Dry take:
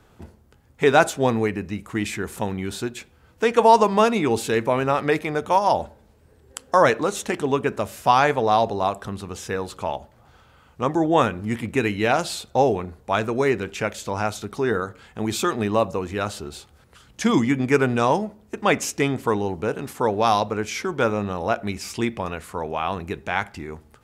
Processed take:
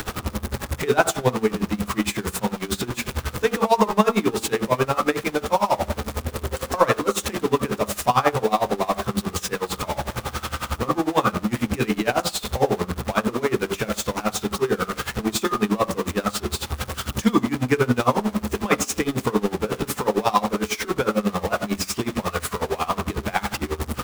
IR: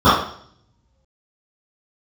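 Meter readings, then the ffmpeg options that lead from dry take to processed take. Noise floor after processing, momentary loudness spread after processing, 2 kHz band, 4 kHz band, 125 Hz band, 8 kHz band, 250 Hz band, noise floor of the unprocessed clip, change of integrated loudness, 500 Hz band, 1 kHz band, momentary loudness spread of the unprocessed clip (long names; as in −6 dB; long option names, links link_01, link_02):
−42 dBFS, 8 LU, −1.0 dB, +2.5 dB, +1.5 dB, +4.5 dB, +1.0 dB, −55 dBFS, −1.0 dB, −1.5 dB, −2.0 dB, 12 LU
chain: -filter_complex "[0:a]aeval=exprs='val(0)+0.5*0.106*sgn(val(0))':channel_layout=same,bandreject=frequency=47.47:width_type=h:width=4,bandreject=frequency=94.94:width_type=h:width=4,bandreject=frequency=142.41:width_type=h:width=4,bandreject=frequency=189.88:width_type=h:width=4,bandreject=frequency=237.35:width_type=h:width=4,bandreject=frequency=284.82:width_type=h:width=4,bandreject=frequency=332.29:width_type=h:width=4,bandreject=frequency=379.76:width_type=h:width=4,bandreject=frequency=427.23:width_type=h:width=4,bandreject=frequency=474.7:width_type=h:width=4,bandreject=frequency=522.17:width_type=h:width=4,bandreject=frequency=569.64:width_type=h:width=4,bandreject=frequency=617.11:width_type=h:width=4,bandreject=frequency=664.58:width_type=h:width=4,bandreject=frequency=712.05:width_type=h:width=4,bandreject=frequency=759.52:width_type=h:width=4,bandreject=frequency=806.99:width_type=h:width=4,bandreject=frequency=854.46:width_type=h:width=4,bandreject=frequency=901.93:width_type=h:width=4,bandreject=frequency=949.4:width_type=h:width=4,bandreject=frequency=996.87:width_type=h:width=4,bandreject=frequency=1044.34:width_type=h:width=4,bandreject=frequency=1091.81:width_type=h:width=4,bandreject=frequency=1139.28:width_type=h:width=4,bandreject=frequency=1186.75:width_type=h:width=4,bandreject=frequency=1234.22:width_type=h:width=4,bandreject=frequency=1281.69:width_type=h:width=4,bandreject=frequency=1329.16:width_type=h:width=4,bandreject=frequency=1376.63:width_type=h:width=4,bandreject=frequency=1424.1:width_type=h:width=4,bandreject=frequency=1471.57:width_type=h:width=4,asplit=2[link_01][link_02];[1:a]atrim=start_sample=2205,atrim=end_sample=3087[link_03];[link_02][link_03]afir=irnorm=-1:irlink=0,volume=-32.5dB[link_04];[link_01][link_04]amix=inputs=2:normalize=0,aeval=exprs='val(0)*pow(10,-21*(0.5-0.5*cos(2*PI*11*n/s))/20)':channel_layout=same"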